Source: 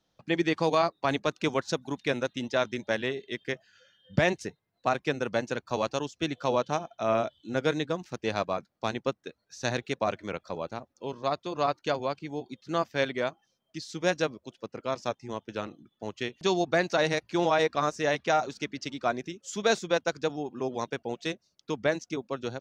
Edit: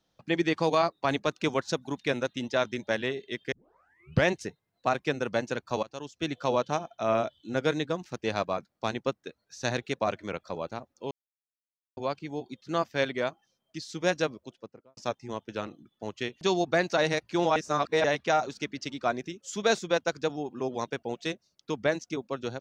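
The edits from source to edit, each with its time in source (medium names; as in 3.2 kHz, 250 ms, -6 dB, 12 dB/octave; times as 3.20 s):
3.52 s: tape start 0.75 s
5.83–6.32 s: fade in, from -21 dB
11.11–11.97 s: mute
14.37–14.97 s: studio fade out
17.56–18.04 s: reverse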